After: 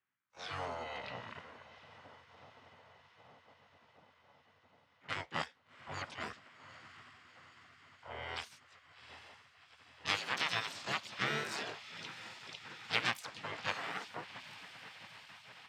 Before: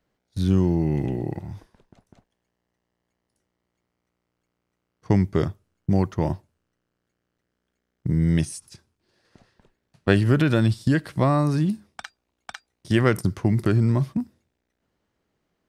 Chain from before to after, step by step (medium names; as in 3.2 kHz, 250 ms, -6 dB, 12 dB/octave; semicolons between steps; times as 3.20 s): single-diode clipper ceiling -13 dBFS; band-pass 490–4400 Hz; level-controlled noise filter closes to 860 Hz, open at -27.5 dBFS; on a send: echo that smears into a reverb 774 ms, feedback 69%, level -16 dB; on the sum: spectral gate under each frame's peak -15 dB weak; in parallel at -3 dB: compression, threshold -51 dBFS, peak gain reduction 19.5 dB; on the sum: harmony voices +7 st -5 dB; trim +1.5 dB